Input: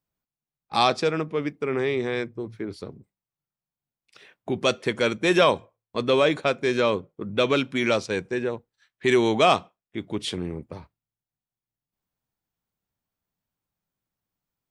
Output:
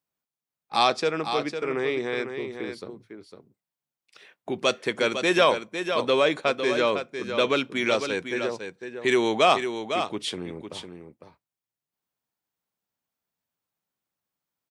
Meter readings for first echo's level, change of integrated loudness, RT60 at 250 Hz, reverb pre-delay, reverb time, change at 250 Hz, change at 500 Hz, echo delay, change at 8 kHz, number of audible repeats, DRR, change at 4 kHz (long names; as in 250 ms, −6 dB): −8.0 dB, −1.0 dB, no reverb audible, no reverb audible, no reverb audible, −3.0 dB, −1.0 dB, 504 ms, +0.5 dB, 1, no reverb audible, +0.5 dB